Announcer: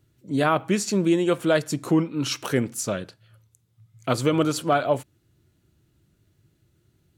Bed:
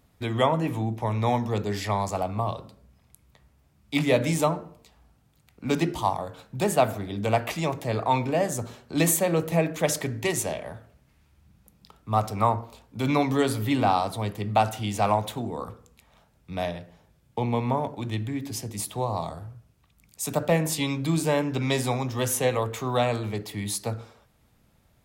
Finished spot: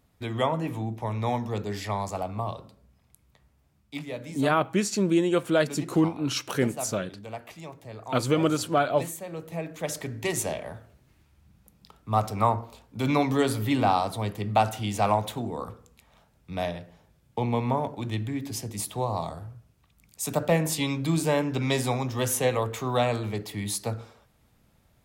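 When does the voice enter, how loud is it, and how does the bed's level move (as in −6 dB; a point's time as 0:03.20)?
4.05 s, −2.0 dB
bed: 0:03.77 −3.5 dB
0:04.06 −14.5 dB
0:09.23 −14.5 dB
0:10.44 −0.5 dB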